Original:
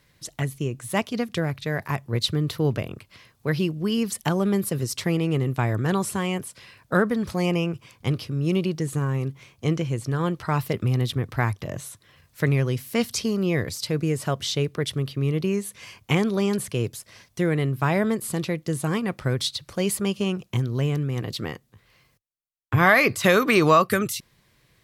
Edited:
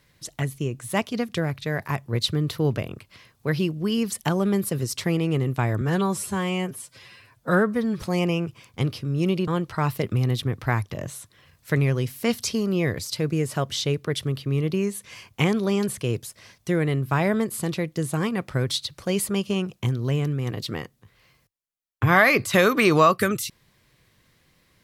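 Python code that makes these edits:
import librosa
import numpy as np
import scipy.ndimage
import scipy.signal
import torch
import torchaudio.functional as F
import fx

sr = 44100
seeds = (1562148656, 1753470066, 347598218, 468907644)

y = fx.edit(x, sr, fx.stretch_span(start_s=5.81, length_s=1.47, factor=1.5),
    fx.cut(start_s=8.74, length_s=1.44), tone=tone)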